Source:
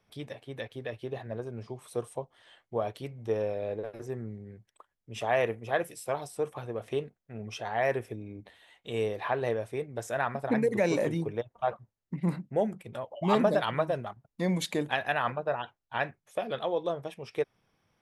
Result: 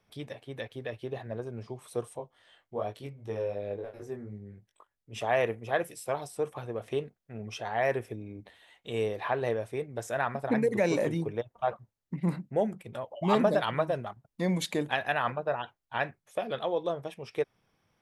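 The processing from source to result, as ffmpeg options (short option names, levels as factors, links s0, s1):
-filter_complex "[0:a]asettb=1/sr,asplit=3[s0][s1][s2];[s0]atrim=end=2.174[s3];[s1]atrim=start=2.17:end=5.13,asetpts=PTS-STARTPTS,afade=t=in:d=0.004:c=qsin,afade=t=out:st=2.956:d=0.004:c=qsin,flanger=delay=19:depth=2.3:speed=2.7[s4];[s2]atrim=start=5.126[s5];[s3][s4]acrossfade=d=0.004:c1=hsin:c2=qsin[s6];[s6][s5]acrossfade=d=0.004:c1=qsin:c2=hsin"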